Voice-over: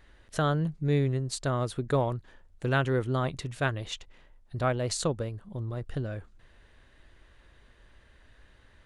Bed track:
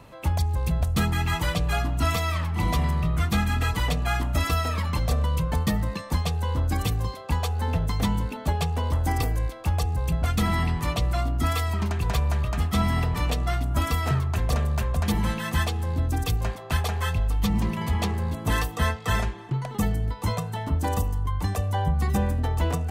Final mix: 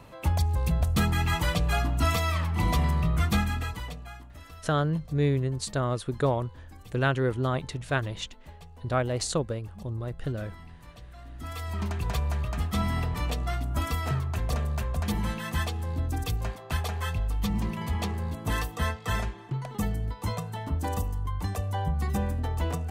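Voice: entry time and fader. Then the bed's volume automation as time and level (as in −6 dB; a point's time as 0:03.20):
4.30 s, +1.0 dB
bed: 0:03.35 −1 dB
0:04.33 −23 dB
0:11.15 −23 dB
0:11.80 −4.5 dB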